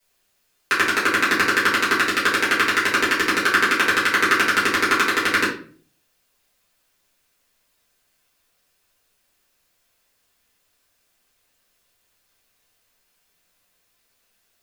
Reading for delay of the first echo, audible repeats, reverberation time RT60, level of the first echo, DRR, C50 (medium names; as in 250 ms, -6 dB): no echo, no echo, 0.45 s, no echo, -8.5 dB, 6.5 dB